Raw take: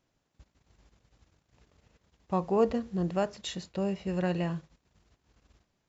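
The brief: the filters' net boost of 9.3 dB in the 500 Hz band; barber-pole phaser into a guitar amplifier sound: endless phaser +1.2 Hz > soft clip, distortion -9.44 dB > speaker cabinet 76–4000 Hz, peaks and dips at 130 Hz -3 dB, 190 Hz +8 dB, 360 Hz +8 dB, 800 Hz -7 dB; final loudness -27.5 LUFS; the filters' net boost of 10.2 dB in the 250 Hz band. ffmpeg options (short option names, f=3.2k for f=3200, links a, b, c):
-filter_complex "[0:a]equalizer=f=250:t=o:g=5,equalizer=f=500:t=o:g=6.5,asplit=2[a][b];[b]afreqshift=1.2[c];[a][c]amix=inputs=2:normalize=1,asoftclip=threshold=-21dB,highpass=76,equalizer=f=130:t=q:w=4:g=-3,equalizer=f=190:t=q:w=4:g=8,equalizer=f=360:t=q:w=4:g=8,equalizer=f=800:t=q:w=4:g=-7,lowpass=f=4k:w=0.5412,lowpass=f=4k:w=1.3066,volume=-1dB"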